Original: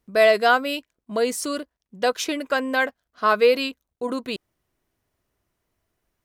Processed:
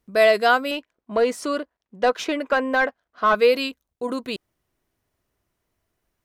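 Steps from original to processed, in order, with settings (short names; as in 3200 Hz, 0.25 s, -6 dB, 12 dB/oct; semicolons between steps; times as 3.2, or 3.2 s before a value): 0.71–3.35 overdrive pedal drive 14 dB, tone 1100 Hz, clips at -6 dBFS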